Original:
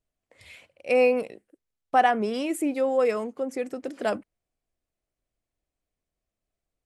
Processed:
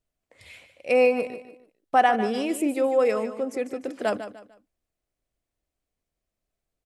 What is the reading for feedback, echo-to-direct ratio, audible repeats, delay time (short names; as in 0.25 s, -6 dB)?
32%, -11.0 dB, 3, 0.149 s